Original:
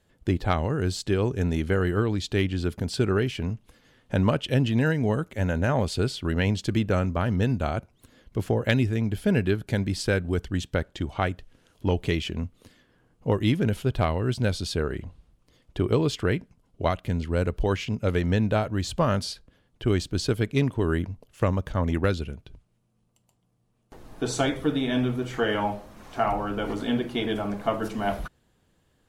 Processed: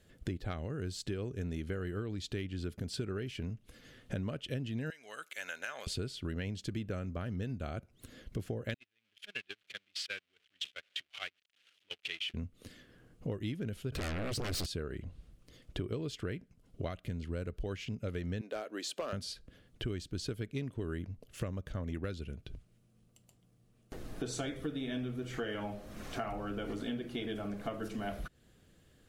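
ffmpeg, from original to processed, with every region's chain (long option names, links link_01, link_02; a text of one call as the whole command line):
ffmpeg -i in.wav -filter_complex "[0:a]asettb=1/sr,asplit=3[link_01][link_02][link_03];[link_01]atrim=end=4.904[link_04];[link_02]atrim=start=4.9:end=5.87,asetpts=PTS-STARTPTS,afade=type=in:duration=0.004:curve=qsin,afade=type=out:start_time=0.966:duration=0.004:curve=qsin,highpass=1500,bandreject=frequency=1900:width=14[link_05];[link_03]atrim=start=5.866[link_06];[link_04][link_05]acrossfade=duration=0.004:curve1=hsin:curve2=qsin[link_07];[link_07][link_06]acrossfade=duration=0.004:curve1=qsin:curve2=hsin,asettb=1/sr,asplit=3[link_08][link_09][link_10];[link_08]atrim=end=8.744[link_11];[link_09]atrim=start=8.74:end=12.34,asetpts=PTS-STARTPTS,afade=type=in:duration=0.004:curve=qsin,afade=type=out:start_time=3.596:duration=0.004:curve=qsin,aeval=exprs='val(0)+0.5*0.0531*sgn(val(0))':channel_layout=same,bandpass=frequency=2900:width_type=q:width=2.1,agate=range=-33dB:threshold=-37dB:ratio=16:release=100:detection=peak[link_12];[link_10]atrim=start=12.336[link_13];[link_11][link_12]acrossfade=duration=0.004:curve1=hsin:curve2=qsin[link_14];[link_14][link_13]acrossfade=duration=0.004:curve1=qsin:curve2=hsin,asettb=1/sr,asplit=3[link_15][link_16][link_17];[link_15]atrim=end=13.924[link_18];[link_16]atrim=start=13.92:end=14.66,asetpts=PTS-STARTPTS,afade=type=in:duration=0.004:curve=qsin,afade=type=out:start_time=0.736:duration=0.004:curve=qsin,bandreject=frequency=3400:width=5.5,acompressor=threshold=-31dB:ratio=3:attack=3.2:release=140:knee=1:detection=peak,aeval=exprs='0.0891*sin(PI/2*5.62*val(0)/0.0891)':channel_layout=same[link_19];[link_17]atrim=start=14.656[link_20];[link_18][link_19]acrossfade=duration=0.004:curve1=hsin:curve2=qsin[link_21];[link_21][link_20]acrossfade=duration=0.004:curve1=qsin:curve2=hsin,asettb=1/sr,asplit=3[link_22][link_23][link_24];[link_22]atrim=end=18.414[link_25];[link_23]atrim=start=18.41:end=19.13,asetpts=PTS-STARTPTS,afade=type=in:duration=0.004:curve=qsin,afade=type=out:start_time=0.716:duration=0.004:curve=qsin,highpass=frequency=330:width=0.5412,highpass=frequency=330:width=1.3066,volume=18dB,asoftclip=hard,volume=-18dB[link_26];[link_24]atrim=start=19.126[link_27];[link_25][link_26]acrossfade=duration=0.004:curve1=hsin:curve2=qsin[link_28];[link_28][link_27]acrossfade=duration=0.004:curve1=qsin:curve2=hsin,equalizer=frequency=920:width=2.5:gain=-10,acompressor=threshold=-41dB:ratio=4,volume=3dB" out.wav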